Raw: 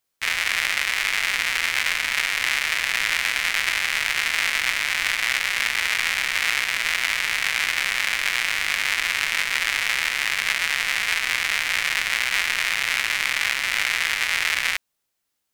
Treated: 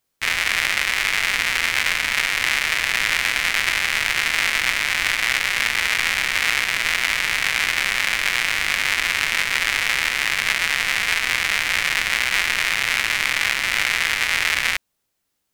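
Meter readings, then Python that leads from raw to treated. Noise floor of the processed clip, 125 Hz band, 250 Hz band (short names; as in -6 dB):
-75 dBFS, n/a, +6.5 dB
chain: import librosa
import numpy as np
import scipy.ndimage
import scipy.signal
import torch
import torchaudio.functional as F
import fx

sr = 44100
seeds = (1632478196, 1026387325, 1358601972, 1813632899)

y = fx.low_shelf(x, sr, hz=500.0, db=6.0)
y = y * 10.0 ** (2.0 / 20.0)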